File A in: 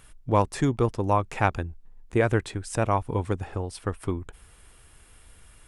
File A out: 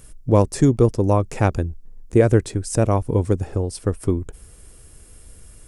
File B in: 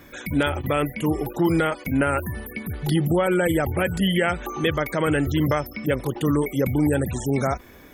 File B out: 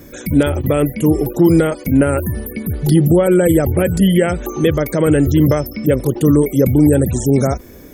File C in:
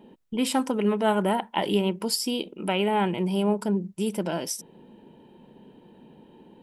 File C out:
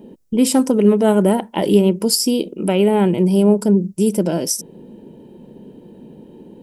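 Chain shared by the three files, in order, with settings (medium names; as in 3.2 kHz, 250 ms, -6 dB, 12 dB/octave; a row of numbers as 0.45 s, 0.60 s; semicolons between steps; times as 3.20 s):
high-order bell 1.7 kHz -10 dB 2.7 oct; peak normalisation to -1.5 dBFS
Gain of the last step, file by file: +8.5 dB, +10.0 dB, +11.0 dB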